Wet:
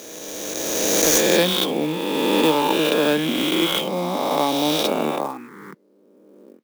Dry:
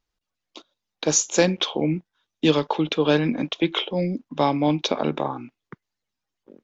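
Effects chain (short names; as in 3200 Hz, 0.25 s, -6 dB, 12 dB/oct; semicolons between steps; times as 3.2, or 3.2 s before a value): spectral swells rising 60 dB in 2.71 s; HPF 180 Hz 24 dB/oct; clock jitter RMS 0.02 ms; gain -2 dB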